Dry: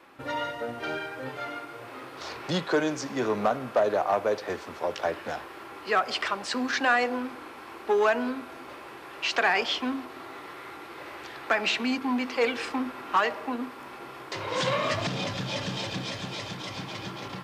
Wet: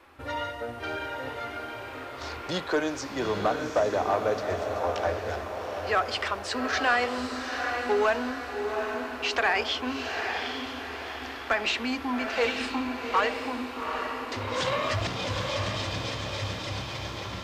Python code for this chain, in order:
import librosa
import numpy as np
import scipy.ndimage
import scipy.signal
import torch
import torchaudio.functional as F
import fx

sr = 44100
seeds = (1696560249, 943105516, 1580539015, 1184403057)

p1 = fx.low_shelf_res(x, sr, hz=110.0, db=9.5, q=3.0)
p2 = p1 + fx.echo_diffused(p1, sr, ms=807, feedback_pct=46, wet_db=-5.0, dry=0)
y = p2 * 10.0 ** (-1.0 / 20.0)